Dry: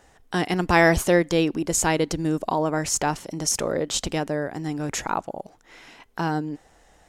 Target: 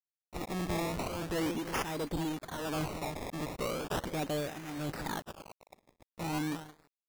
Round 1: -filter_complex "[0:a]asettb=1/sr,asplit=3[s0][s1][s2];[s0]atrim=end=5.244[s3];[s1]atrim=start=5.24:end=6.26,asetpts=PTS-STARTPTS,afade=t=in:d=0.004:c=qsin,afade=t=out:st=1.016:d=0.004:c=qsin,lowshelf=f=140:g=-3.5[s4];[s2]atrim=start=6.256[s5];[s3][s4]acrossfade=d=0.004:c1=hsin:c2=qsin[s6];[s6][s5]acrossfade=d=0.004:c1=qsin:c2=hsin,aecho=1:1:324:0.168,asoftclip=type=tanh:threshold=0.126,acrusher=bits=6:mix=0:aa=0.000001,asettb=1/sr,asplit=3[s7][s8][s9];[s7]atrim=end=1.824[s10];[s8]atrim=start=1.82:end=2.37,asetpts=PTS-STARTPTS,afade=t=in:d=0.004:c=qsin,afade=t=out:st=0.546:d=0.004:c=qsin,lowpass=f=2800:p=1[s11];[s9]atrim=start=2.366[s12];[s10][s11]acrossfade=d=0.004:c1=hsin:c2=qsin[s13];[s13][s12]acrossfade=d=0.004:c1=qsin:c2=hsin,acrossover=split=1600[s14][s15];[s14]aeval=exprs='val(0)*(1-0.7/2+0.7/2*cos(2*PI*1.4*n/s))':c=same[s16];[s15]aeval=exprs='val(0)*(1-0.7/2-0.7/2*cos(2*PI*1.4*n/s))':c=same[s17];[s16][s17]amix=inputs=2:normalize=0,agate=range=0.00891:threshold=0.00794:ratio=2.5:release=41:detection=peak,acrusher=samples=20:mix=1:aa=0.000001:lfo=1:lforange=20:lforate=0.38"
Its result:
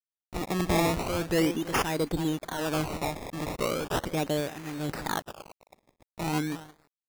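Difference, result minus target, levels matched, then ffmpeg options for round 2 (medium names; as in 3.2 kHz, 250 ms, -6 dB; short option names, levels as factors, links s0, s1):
saturation: distortion -6 dB
-filter_complex "[0:a]asettb=1/sr,asplit=3[s0][s1][s2];[s0]atrim=end=5.244[s3];[s1]atrim=start=5.24:end=6.26,asetpts=PTS-STARTPTS,afade=t=in:d=0.004:c=qsin,afade=t=out:st=1.016:d=0.004:c=qsin,lowshelf=f=140:g=-3.5[s4];[s2]atrim=start=6.256[s5];[s3][s4]acrossfade=d=0.004:c1=hsin:c2=qsin[s6];[s6][s5]acrossfade=d=0.004:c1=qsin:c2=hsin,aecho=1:1:324:0.168,asoftclip=type=tanh:threshold=0.0376,acrusher=bits=6:mix=0:aa=0.000001,asettb=1/sr,asplit=3[s7][s8][s9];[s7]atrim=end=1.824[s10];[s8]atrim=start=1.82:end=2.37,asetpts=PTS-STARTPTS,afade=t=in:d=0.004:c=qsin,afade=t=out:st=0.546:d=0.004:c=qsin,lowpass=f=2800:p=1[s11];[s9]atrim=start=2.366[s12];[s10][s11]acrossfade=d=0.004:c1=hsin:c2=qsin[s13];[s13][s12]acrossfade=d=0.004:c1=qsin:c2=hsin,acrossover=split=1600[s14][s15];[s14]aeval=exprs='val(0)*(1-0.7/2+0.7/2*cos(2*PI*1.4*n/s))':c=same[s16];[s15]aeval=exprs='val(0)*(1-0.7/2-0.7/2*cos(2*PI*1.4*n/s))':c=same[s17];[s16][s17]amix=inputs=2:normalize=0,agate=range=0.00891:threshold=0.00794:ratio=2.5:release=41:detection=peak,acrusher=samples=20:mix=1:aa=0.000001:lfo=1:lforange=20:lforate=0.38"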